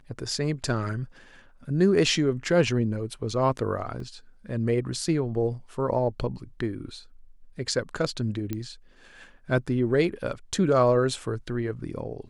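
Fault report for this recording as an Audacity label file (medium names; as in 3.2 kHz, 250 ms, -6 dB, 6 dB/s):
4.000000	4.000000	dropout 2.2 ms
8.530000	8.530000	pop -17 dBFS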